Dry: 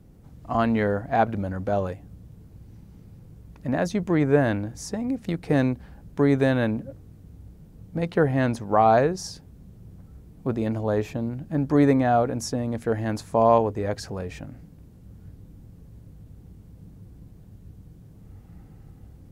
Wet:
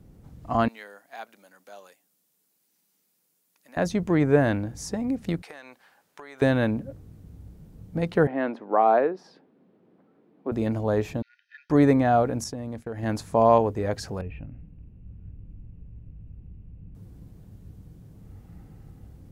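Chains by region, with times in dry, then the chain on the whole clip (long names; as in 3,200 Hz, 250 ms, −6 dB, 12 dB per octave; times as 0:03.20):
0:00.68–0:03.77: high-pass filter 180 Hz 24 dB per octave + first difference
0:05.42–0:06.42: high-pass filter 960 Hz + downward compressor 16 to 1, threshold −38 dBFS
0:08.27–0:10.52: high-pass filter 270 Hz 24 dB per octave + high-frequency loss of the air 410 metres
0:11.22–0:11.70: linear-phase brick-wall band-pass 1,400–6,400 Hz + high-frequency loss of the air 140 metres + comb filter 1.6 ms, depth 66%
0:12.44–0:13.03: downward expander −32 dBFS + downward compressor 4 to 1, threshold −31 dBFS
0:14.21–0:16.95: transistor ladder low-pass 2,800 Hz, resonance 80% + spectral tilt −4 dB per octave
whole clip: no processing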